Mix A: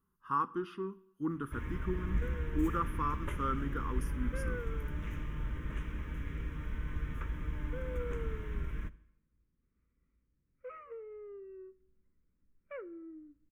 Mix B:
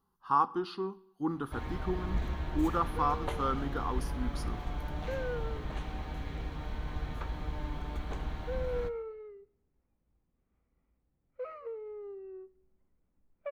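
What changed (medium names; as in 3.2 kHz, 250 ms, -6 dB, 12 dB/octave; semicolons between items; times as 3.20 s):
second sound: entry +0.75 s; master: remove static phaser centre 1.8 kHz, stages 4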